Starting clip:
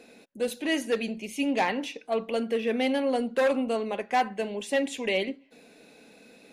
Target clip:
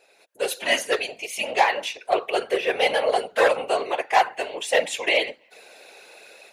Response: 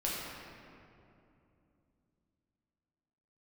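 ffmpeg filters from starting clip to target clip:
-af "highpass=f=540:w=0.5412,highpass=f=540:w=1.3066,dynaudnorm=f=180:g=3:m=4.73,afftfilt=real='hypot(re,im)*cos(2*PI*random(0))':imag='hypot(re,im)*sin(2*PI*random(1))':win_size=512:overlap=0.75,volume=1.26"

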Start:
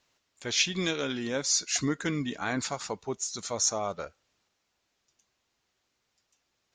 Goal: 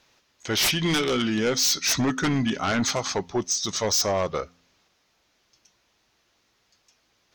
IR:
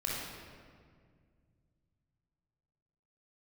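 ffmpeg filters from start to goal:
-af "bandreject=f=94.45:t=h:w=4,bandreject=f=188.9:t=h:w=4,bandreject=f=283.35:t=h:w=4,asetrate=40517,aresample=44100,aeval=exprs='0.282*sin(PI/2*4.47*val(0)/0.282)':c=same,volume=0.447"

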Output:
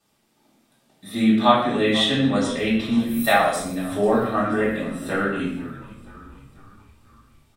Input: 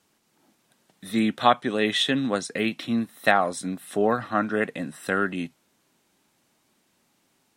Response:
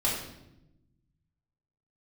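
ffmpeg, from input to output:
-filter_complex "[0:a]asettb=1/sr,asplit=3[s0][s1][s2];[s0]atrim=end=2.974[s3];[s1]atrim=start=2.97:end=3.56,asetpts=PTS-STARTPTS,afade=t=in:d=0.004:c=qsin,afade=t=out:st=0.586:d=0.004:c=qsin,aemphasis=mode=production:type=bsi[s4];[s2]atrim=start=3.556[s5];[s3][s4]acrossfade=d=0.004:c1=hsin:c2=qsin[s6];[s6][s5]acrossfade=d=0.004:c1=qsin:c2=hsin,asplit=6[s7][s8][s9][s10][s11][s12];[s8]adelay=488,afreqshift=-63,volume=0.126[s13];[s9]adelay=976,afreqshift=-126,volume=0.0692[s14];[s10]adelay=1464,afreqshift=-189,volume=0.038[s15];[s11]adelay=1952,afreqshift=-252,volume=0.0209[s16];[s12]adelay=2440,afreqshift=-315,volume=0.0115[s17];[s7][s13][s14][s15][s16][s17]amix=inputs=6:normalize=0[s18];[1:a]atrim=start_sample=2205,afade=t=out:st=0.37:d=0.01,atrim=end_sample=16758[s19];[s18][s19]afir=irnorm=-1:irlink=0,volume=0.447"

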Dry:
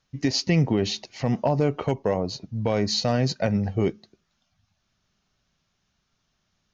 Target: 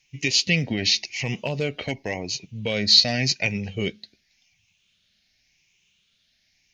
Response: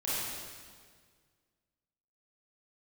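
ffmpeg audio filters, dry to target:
-af "afftfilt=real='re*pow(10,8/40*sin(2*PI*(0.72*log(max(b,1)*sr/1024/100)/log(2)-(0.89)*(pts-256)/sr)))':imag='im*pow(10,8/40*sin(2*PI*(0.72*log(max(b,1)*sr/1024/100)/log(2)-(0.89)*(pts-256)/sr)))':win_size=1024:overlap=0.75,highshelf=f=1700:t=q:w=3:g=11,volume=0.596"

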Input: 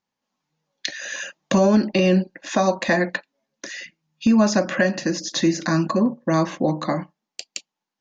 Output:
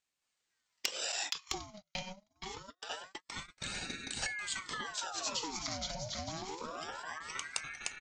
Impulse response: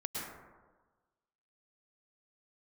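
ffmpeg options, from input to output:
-filter_complex "[0:a]aecho=1:1:470|752|921.2|1023|1084:0.631|0.398|0.251|0.158|0.1,acompressor=threshold=0.0355:ratio=6,equalizer=f=5100:t=o:w=2.8:g=13.5,volume=2.11,asoftclip=hard,volume=0.473,asettb=1/sr,asplit=3[s0][s1][s2];[s0]atrim=end=1.124[s3];[s1]atrim=start=1.12:end=3.66,asetpts=PTS-STARTPTS,afade=t=in:d=0.004:c=qsin,afade=t=out:st=2.536:d=0.004:c=qsin,agate=range=0.00708:threshold=0.0501:ratio=16:detection=peak[s4];[s2]atrim=start=3.656[s5];[s3][s4]acrossfade=d=0.004:c1=hsin:c2=qsin[s6];[s6][s5]acrossfade=d=0.004:c1=qsin:c2=hsin,equalizer=f=1000:t=o:w=0.63:g=-14.5,aeval=exprs='val(0)*sin(2*PI*1200*n/s+1200*0.7/0.25*sin(2*PI*0.25*n/s))':c=same,volume=0.376"

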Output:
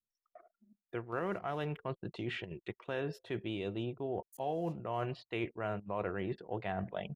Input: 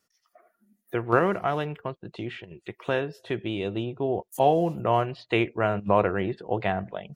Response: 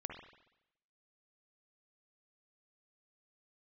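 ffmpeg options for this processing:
-af "areverse,acompressor=threshold=0.0178:ratio=5,areverse,anlmdn=0.000158"

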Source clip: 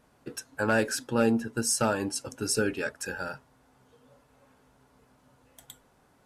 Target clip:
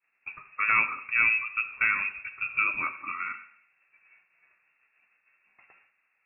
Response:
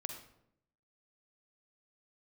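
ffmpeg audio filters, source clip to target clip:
-filter_complex "[0:a]agate=range=0.0224:threshold=0.00178:ratio=3:detection=peak,asplit=2[s0][s1];[1:a]atrim=start_sample=2205,lowshelf=f=160:g=-9[s2];[s1][s2]afir=irnorm=-1:irlink=0,volume=1.19[s3];[s0][s3]amix=inputs=2:normalize=0,lowpass=f=2400:t=q:w=0.5098,lowpass=f=2400:t=q:w=0.6013,lowpass=f=2400:t=q:w=0.9,lowpass=f=2400:t=q:w=2.563,afreqshift=-2800,volume=0.631"

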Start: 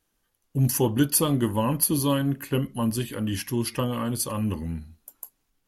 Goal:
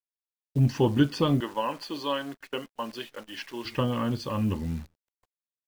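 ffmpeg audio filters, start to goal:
-filter_complex "[0:a]asettb=1/sr,asplit=3[s0][s1][s2];[s0]atrim=end=1.404[s3];[s1]atrim=start=1.4:end=3.65,asetpts=PTS-STARTPTS,afade=t=in:d=0.004:c=qsin,afade=t=out:st=2.246:d=0.004:c=qsin,highpass=530[s4];[s2]atrim=start=3.646[s5];[s3][s4]acrossfade=d=0.004:c1=hsin:c2=qsin[s6];[s6][s5]acrossfade=d=0.004:c1=qsin:c2=hsin,agate=range=0.0891:threshold=0.0141:ratio=16:detection=peak,lowpass=f=4300:w=0.5412,lowpass=f=4300:w=1.3066,acrusher=bits=9:dc=4:mix=0:aa=0.000001"

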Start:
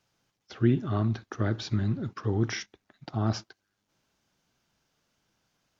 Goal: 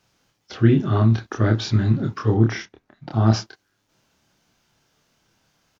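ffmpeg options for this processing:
-filter_complex "[0:a]asettb=1/sr,asplit=3[s0][s1][s2];[s0]atrim=end=2.344[s3];[s1]atrim=start=2.34:end=3.11,asetpts=PTS-STARTPTS,afade=t=in:d=0.004:c=qsin,afade=t=out:st=0.766:d=0.004:c=qsin,highshelf=f=2400:g=-11.5[s4];[s2]atrim=start=3.106[s5];[s3][s4]acrossfade=d=0.004:c1=hsin:c2=qsin[s6];[s6][s5]acrossfade=d=0.004:c1=qsin:c2=hsin,asplit=2[s7][s8];[s8]adelay=27,volume=0.75[s9];[s7][s9]amix=inputs=2:normalize=0,volume=2.24"

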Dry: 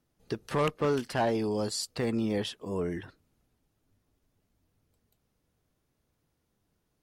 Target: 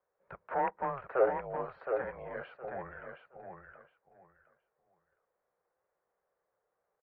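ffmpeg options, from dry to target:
-filter_complex "[0:a]acrossover=split=460[s0][s1];[s0]alimiter=level_in=2.99:limit=0.0631:level=0:latency=1,volume=0.335[s2];[s2][s1]amix=inputs=2:normalize=0,highpass=f=410:t=q:w=0.5412,highpass=f=410:t=q:w=1.307,lowpass=f=2100:t=q:w=0.5176,lowpass=f=2100:t=q:w=0.7071,lowpass=f=2100:t=q:w=1.932,afreqshift=-270,lowshelf=f=360:t=q:w=3:g=-11,aecho=1:1:717|1434|2151:0.501|0.105|0.0221"

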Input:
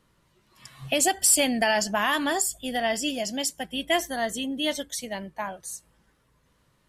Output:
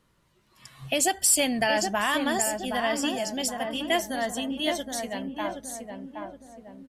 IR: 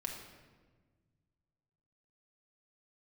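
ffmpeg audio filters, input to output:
-filter_complex "[0:a]asplit=2[s0][s1];[s1]adelay=770,lowpass=f=1100:p=1,volume=0.631,asplit=2[s2][s3];[s3]adelay=770,lowpass=f=1100:p=1,volume=0.51,asplit=2[s4][s5];[s5]adelay=770,lowpass=f=1100:p=1,volume=0.51,asplit=2[s6][s7];[s7]adelay=770,lowpass=f=1100:p=1,volume=0.51,asplit=2[s8][s9];[s9]adelay=770,lowpass=f=1100:p=1,volume=0.51,asplit=2[s10][s11];[s11]adelay=770,lowpass=f=1100:p=1,volume=0.51,asplit=2[s12][s13];[s13]adelay=770,lowpass=f=1100:p=1,volume=0.51[s14];[s0][s2][s4][s6][s8][s10][s12][s14]amix=inputs=8:normalize=0,volume=0.841"

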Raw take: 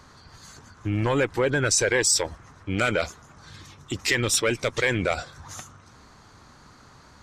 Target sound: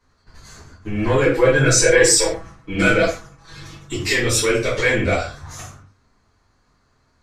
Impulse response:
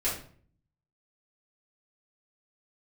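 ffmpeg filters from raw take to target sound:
-filter_complex "[0:a]agate=range=0.141:threshold=0.00447:ratio=16:detection=peak,asettb=1/sr,asplit=3[s0][s1][s2];[s0]atrim=end=1.234[s3];[s1]atrim=start=1.23:end=3.94,asetpts=PTS-STARTPTS,afade=t=in:d=0.004:c=qsin,afade=t=out:st=2.706:d=0.004:c=qsin,aecho=1:1:6.1:0.82,atrim=end_sample=119511[s4];[s2]atrim=start=3.936[s5];[s3][s4]acrossfade=d=0.004:c1=hsin:c2=qsin[s6];[s6][s5]acrossfade=d=0.004:c1=qsin:c2=hsin[s7];[1:a]atrim=start_sample=2205,afade=t=out:st=0.21:d=0.01,atrim=end_sample=9702[s8];[s7][s8]afir=irnorm=-1:irlink=0,volume=0.75"

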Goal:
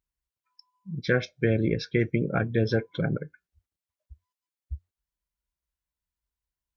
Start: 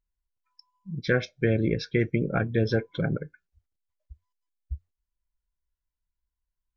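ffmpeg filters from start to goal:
-af "highpass=52"

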